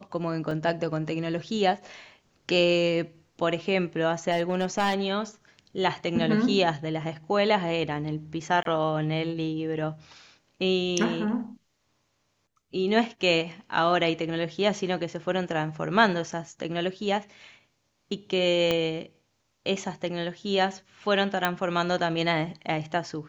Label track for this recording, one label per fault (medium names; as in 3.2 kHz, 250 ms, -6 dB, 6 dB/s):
0.510000	0.510000	dropout 2.2 ms
4.310000	4.940000	clipped -18.5 dBFS
8.630000	8.650000	dropout 22 ms
18.710000	18.710000	pop -11 dBFS
21.450000	21.450000	pop -9 dBFS